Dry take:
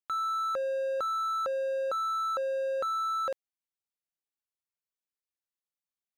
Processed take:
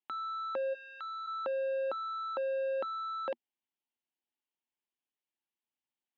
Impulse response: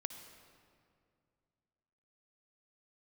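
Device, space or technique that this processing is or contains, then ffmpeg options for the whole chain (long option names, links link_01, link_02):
kitchen radio: -filter_complex "[0:a]asplit=3[link_01][link_02][link_03];[link_01]afade=type=out:start_time=0.73:duration=0.02[link_04];[link_02]highpass=frequency=1300:width=0.5412,highpass=frequency=1300:width=1.3066,afade=type=in:start_time=0.73:duration=0.02,afade=type=out:start_time=1.26:duration=0.02[link_05];[link_03]afade=type=in:start_time=1.26:duration=0.02[link_06];[link_04][link_05][link_06]amix=inputs=3:normalize=0,highpass=210,equalizer=frequency=240:width_type=q:width=4:gain=9,equalizer=frequency=340:width_type=q:width=4:gain=6,equalizer=frequency=500:width_type=q:width=4:gain=-4,equalizer=frequency=870:width_type=q:width=4:gain=7,equalizer=frequency=1300:width_type=q:width=4:gain=-8,equalizer=frequency=3000:width_type=q:width=4:gain=6,lowpass=frequency=3400:width=0.5412,lowpass=frequency=3400:width=1.3066"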